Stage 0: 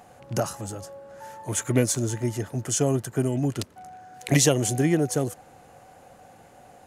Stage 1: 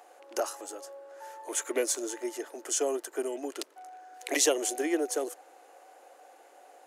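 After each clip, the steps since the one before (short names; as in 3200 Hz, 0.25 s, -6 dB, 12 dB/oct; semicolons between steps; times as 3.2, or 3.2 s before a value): steep high-pass 320 Hz 48 dB/oct; gain -3.5 dB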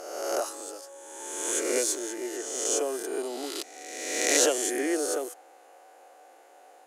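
spectral swells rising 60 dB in 1.39 s; gain -2 dB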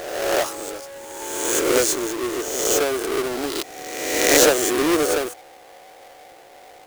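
half-waves squared off; gain +4 dB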